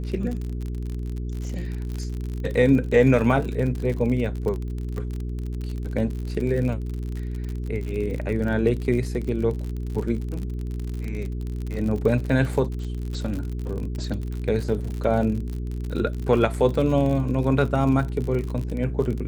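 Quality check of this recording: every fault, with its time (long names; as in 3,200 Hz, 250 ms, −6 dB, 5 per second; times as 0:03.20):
surface crackle 50 per second −29 dBFS
mains hum 60 Hz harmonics 7 −29 dBFS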